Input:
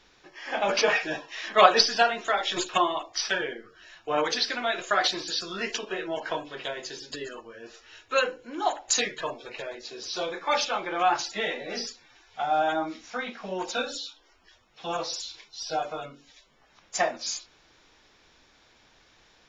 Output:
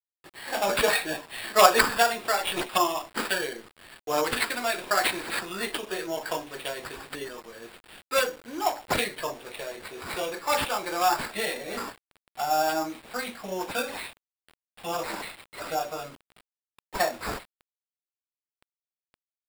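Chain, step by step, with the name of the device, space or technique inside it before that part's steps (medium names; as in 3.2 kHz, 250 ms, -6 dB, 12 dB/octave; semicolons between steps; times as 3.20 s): early 8-bit sampler (sample-rate reducer 6.2 kHz, jitter 0%; bit crusher 8-bit)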